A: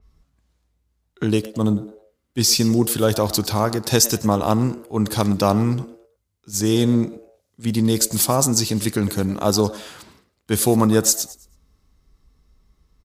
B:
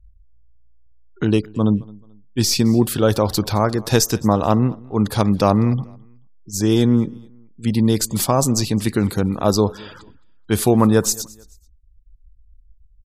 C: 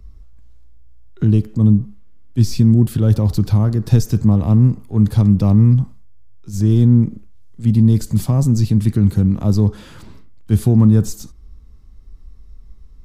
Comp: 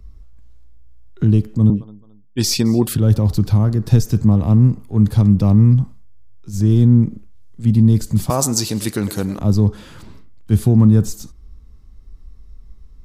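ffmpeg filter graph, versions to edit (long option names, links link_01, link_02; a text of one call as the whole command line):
ffmpeg -i take0.wav -i take1.wav -i take2.wav -filter_complex "[2:a]asplit=3[link_01][link_02][link_03];[link_01]atrim=end=1.702[link_04];[1:a]atrim=start=1.698:end=2.952[link_05];[link_02]atrim=start=2.948:end=8.302[link_06];[0:a]atrim=start=8.298:end=9.392[link_07];[link_03]atrim=start=9.388[link_08];[link_04][link_05]acrossfade=duration=0.004:curve1=hsin:curve2=hsin[link_09];[link_09][link_06]acrossfade=duration=0.004:curve1=hsin:curve2=hsin[link_10];[link_10][link_07]acrossfade=duration=0.004:curve1=hsin:curve2=hsin[link_11];[link_11][link_08]acrossfade=duration=0.004:curve1=hsin:curve2=hsin" out.wav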